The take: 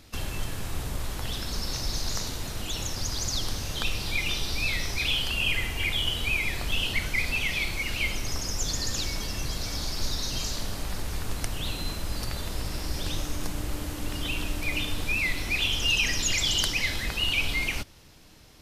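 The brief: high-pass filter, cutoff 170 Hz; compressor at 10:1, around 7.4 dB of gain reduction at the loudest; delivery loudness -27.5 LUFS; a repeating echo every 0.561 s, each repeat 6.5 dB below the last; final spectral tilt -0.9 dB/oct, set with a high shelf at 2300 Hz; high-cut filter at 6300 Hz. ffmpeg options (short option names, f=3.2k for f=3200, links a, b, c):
-af "highpass=170,lowpass=6.3k,highshelf=f=2.3k:g=6.5,acompressor=threshold=-26dB:ratio=10,aecho=1:1:561|1122|1683|2244|2805|3366:0.473|0.222|0.105|0.0491|0.0231|0.0109,volume=1dB"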